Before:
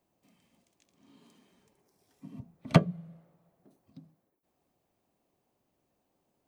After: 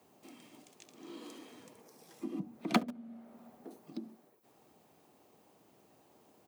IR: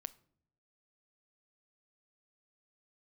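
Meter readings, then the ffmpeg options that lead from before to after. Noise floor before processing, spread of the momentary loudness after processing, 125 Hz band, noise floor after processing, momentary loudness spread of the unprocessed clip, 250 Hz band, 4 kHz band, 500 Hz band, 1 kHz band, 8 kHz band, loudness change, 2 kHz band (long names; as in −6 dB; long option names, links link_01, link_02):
−79 dBFS, 24 LU, −18.0 dB, −67 dBFS, 17 LU, −3.5 dB, −1.5 dB, −7.0 dB, −2.5 dB, +1.5 dB, −13.0 dB, −2.5 dB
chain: -filter_complex "[0:a]asplit=2[link_01][link_02];[link_02]acrusher=bits=4:mix=0:aa=0.000001,volume=-9dB[link_03];[link_01][link_03]amix=inputs=2:normalize=0,acompressor=threshold=-51dB:ratio=2.5,afreqshift=65,asplit=2[link_04][link_05];[link_05]adelay=69,lowpass=frequency=830:poles=1,volume=-19dB,asplit=2[link_06][link_07];[link_07]adelay=69,lowpass=frequency=830:poles=1,volume=0.49,asplit=2[link_08][link_09];[link_09]adelay=69,lowpass=frequency=830:poles=1,volume=0.49,asplit=2[link_10][link_11];[link_11]adelay=69,lowpass=frequency=830:poles=1,volume=0.49[link_12];[link_04][link_06][link_08][link_10][link_12]amix=inputs=5:normalize=0,volume=12.5dB"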